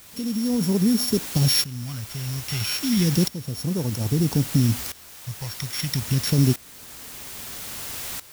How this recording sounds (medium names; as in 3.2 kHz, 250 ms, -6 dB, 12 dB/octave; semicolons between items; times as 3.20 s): a buzz of ramps at a fixed pitch in blocks of 8 samples; phasing stages 2, 0.32 Hz, lowest notch 280–2500 Hz; a quantiser's noise floor 6-bit, dither triangular; tremolo saw up 0.61 Hz, depth 85%